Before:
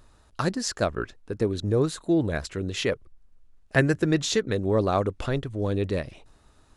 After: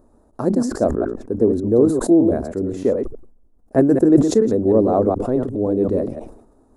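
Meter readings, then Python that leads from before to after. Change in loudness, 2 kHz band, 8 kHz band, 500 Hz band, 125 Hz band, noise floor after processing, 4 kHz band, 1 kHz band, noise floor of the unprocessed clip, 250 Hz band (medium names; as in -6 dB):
+8.5 dB, -10.0 dB, -1.0 dB, +9.5 dB, +1.5 dB, -55 dBFS, no reading, +4.5 dB, -58 dBFS, +11.0 dB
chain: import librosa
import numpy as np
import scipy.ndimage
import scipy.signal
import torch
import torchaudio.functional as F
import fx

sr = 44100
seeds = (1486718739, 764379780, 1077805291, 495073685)

y = fx.reverse_delay(x, sr, ms=105, wet_db=-6.0)
y = fx.curve_eq(y, sr, hz=(160.0, 230.0, 700.0, 3000.0, 9100.0), db=(0, 13, 8, -22, -3))
y = fx.sustainer(y, sr, db_per_s=86.0)
y = y * librosa.db_to_amplitude(-2.0)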